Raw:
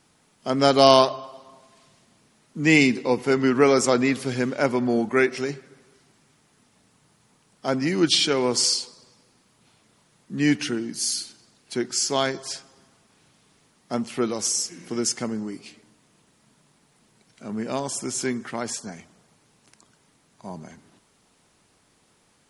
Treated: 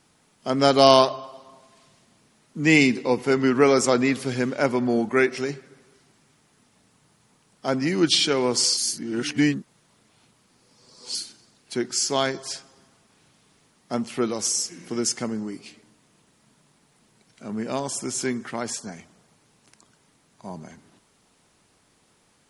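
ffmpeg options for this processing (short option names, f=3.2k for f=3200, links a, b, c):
-filter_complex "[0:a]asplit=3[a][b][c];[a]atrim=end=8.772[d];[b]atrim=start=8.768:end=11.152,asetpts=PTS-STARTPTS,areverse[e];[c]atrim=start=11.148[f];[d][e]acrossfade=d=0.004:c1=hsin:c2=hsin[g];[g][f]acrossfade=d=0.004:c1=hsin:c2=hsin"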